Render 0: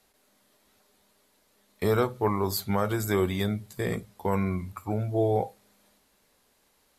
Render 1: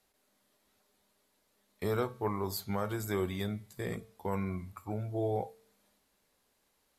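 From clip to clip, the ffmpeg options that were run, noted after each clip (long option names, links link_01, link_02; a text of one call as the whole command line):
ffmpeg -i in.wav -af "bandreject=frequency=224.2:width_type=h:width=4,bandreject=frequency=448.4:width_type=h:width=4,bandreject=frequency=672.6:width_type=h:width=4,bandreject=frequency=896.8:width_type=h:width=4,bandreject=frequency=1121:width_type=h:width=4,bandreject=frequency=1345.2:width_type=h:width=4,bandreject=frequency=1569.4:width_type=h:width=4,bandreject=frequency=1793.6:width_type=h:width=4,bandreject=frequency=2017.8:width_type=h:width=4,bandreject=frequency=2242:width_type=h:width=4,bandreject=frequency=2466.2:width_type=h:width=4,bandreject=frequency=2690.4:width_type=h:width=4,bandreject=frequency=2914.6:width_type=h:width=4,bandreject=frequency=3138.8:width_type=h:width=4,bandreject=frequency=3363:width_type=h:width=4,bandreject=frequency=3587.2:width_type=h:width=4,bandreject=frequency=3811.4:width_type=h:width=4,bandreject=frequency=4035.6:width_type=h:width=4,bandreject=frequency=4259.8:width_type=h:width=4,bandreject=frequency=4484:width_type=h:width=4,bandreject=frequency=4708.2:width_type=h:width=4,bandreject=frequency=4932.4:width_type=h:width=4,bandreject=frequency=5156.6:width_type=h:width=4,bandreject=frequency=5380.8:width_type=h:width=4,bandreject=frequency=5605:width_type=h:width=4,bandreject=frequency=5829.2:width_type=h:width=4,bandreject=frequency=6053.4:width_type=h:width=4,bandreject=frequency=6277.6:width_type=h:width=4,bandreject=frequency=6501.8:width_type=h:width=4,bandreject=frequency=6726:width_type=h:width=4,bandreject=frequency=6950.2:width_type=h:width=4,volume=-7.5dB" out.wav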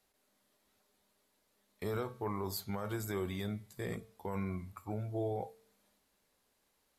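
ffmpeg -i in.wav -af "alimiter=level_in=1.5dB:limit=-24dB:level=0:latency=1:release=24,volume=-1.5dB,volume=-2dB" out.wav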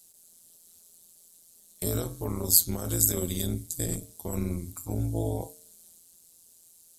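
ffmpeg -i in.wav -af "equalizer=frequency=125:width_type=o:width=1:gain=8,equalizer=frequency=1000:width_type=o:width=1:gain=-7,equalizer=frequency=2000:width_type=o:width=1:gain=-10,equalizer=frequency=8000:width_type=o:width=1:gain=10,crystalizer=i=3.5:c=0,tremolo=f=170:d=0.919,volume=8dB" out.wav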